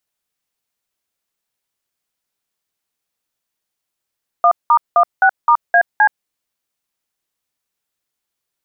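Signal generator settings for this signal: DTMF "1*16*AC", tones 74 ms, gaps 0.186 s, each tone -10 dBFS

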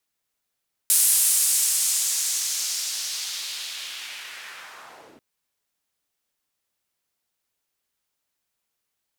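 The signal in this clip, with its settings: swept filtered noise white, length 4.29 s bandpass, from 10000 Hz, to 200 Hz, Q 1.5, linear, gain ramp -21 dB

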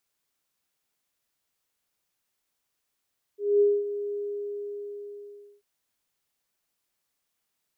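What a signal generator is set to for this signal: ADSR sine 409 Hz, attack 0.224 s, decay 0.232 s, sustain -12.5 dB, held 0.76 s, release 1.48 s -16 dBFS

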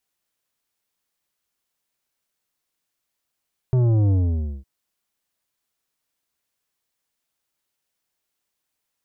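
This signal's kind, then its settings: sub drop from 130 Hz, over 0.91 s, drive 10 dB, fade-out 0.53 s, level -16 dB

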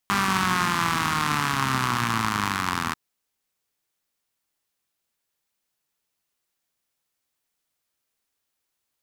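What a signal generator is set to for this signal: four-cylinder engine model, changing speed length 2.84 s, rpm 6000, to 2400, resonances 130/210/1100 Hz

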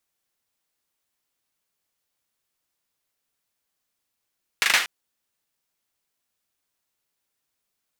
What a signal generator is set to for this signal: hand clap length 0.24 s, apart 39 ms, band 2000 Hz, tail 0.40 s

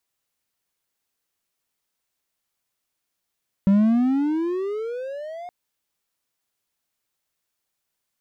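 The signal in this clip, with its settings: gliding synth tone triangle, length 1.82 s, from 192 Hz, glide +23 st, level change -20.5 dB, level -10.5 dB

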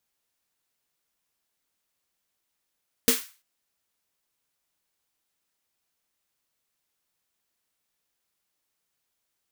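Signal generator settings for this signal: snare drum length 0.34 s, tones 250 Hz, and 460 Hz, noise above 1200 Hz, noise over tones 1 dB, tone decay 0.16 s, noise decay 0.36 s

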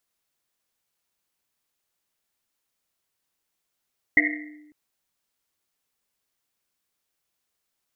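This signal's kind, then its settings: Risset drum length 0.55 s, pitch 300 Hz, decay 1.19 s, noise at 2000 Hz, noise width 260 Hz, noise 60%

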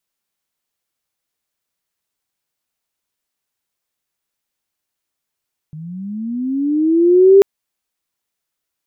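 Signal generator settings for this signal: chirp linear 150 Hz -> 400 Hz -28.5 dBFS -> -3 dBFS 1.69 s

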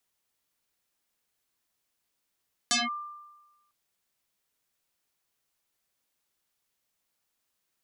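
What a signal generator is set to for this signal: FM tone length 1.00 s, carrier 1190 Hz, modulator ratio 0.8, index 7.9, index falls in 0.18 s linear, decay 1.17 s, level -20.5 dB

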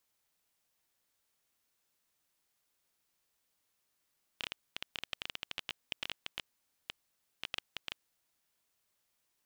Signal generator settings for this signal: random clicks 11/s -19.5 dBFS 3.84 s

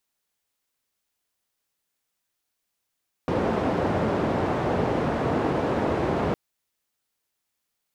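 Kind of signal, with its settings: noise band 80–610 Hz, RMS -24.5 dBFS 3.06 s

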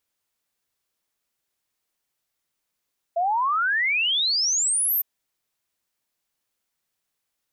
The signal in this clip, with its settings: log sweep 660 Hz -> 14000 Hz 1.86 s -19.5 dBFS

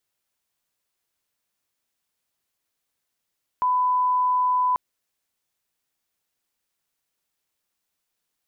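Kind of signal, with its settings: line-up tone -18 dBFS 1.14 s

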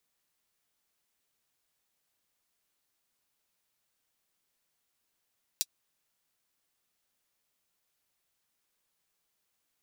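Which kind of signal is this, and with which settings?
closed hi-hat, high-pass 4300 Hz, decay 0.05 s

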